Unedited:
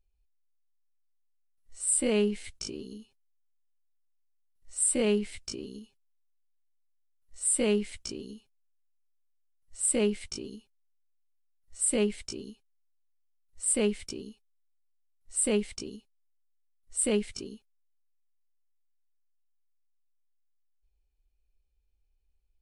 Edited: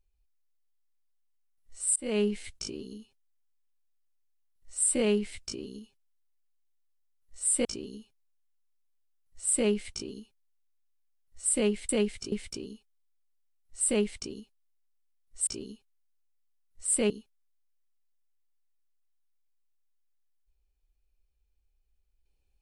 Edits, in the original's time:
1.96–2.32 s: fade in equal-power
7.65–8.01 s: delete
12.25–13.88 s: swap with 17.03–17.46 s

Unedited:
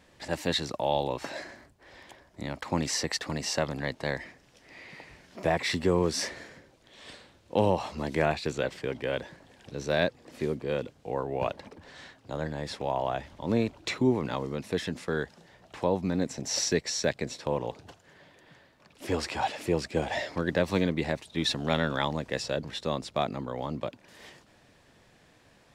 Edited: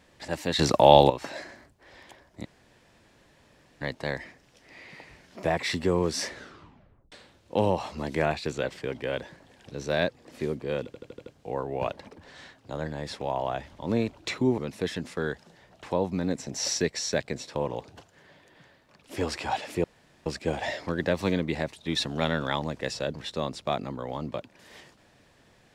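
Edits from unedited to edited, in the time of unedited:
0.59–1.10 s: gain +12 dB
2.45–3.81 s: room tone
6.32 s: tape stop 0.80 s
10.86 s: stutter 0.08 s, 6 plays
14.18–14.49 s: delete
19.75 s: insert room tone 0.42 s

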